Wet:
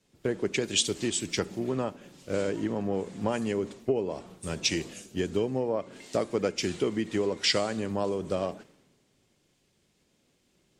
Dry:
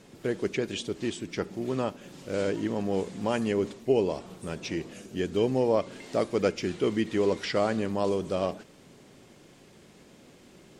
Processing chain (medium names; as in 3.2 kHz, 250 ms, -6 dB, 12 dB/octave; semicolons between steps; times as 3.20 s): dynamic bell 7.7 kHz, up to +5 dB, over -58 dBFS, Q 2.2; compression 12:1, threshold -29 dBFS, peak gain reduction 11.5 dB; three bands expanded up and down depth 100%; trim +4.5 dB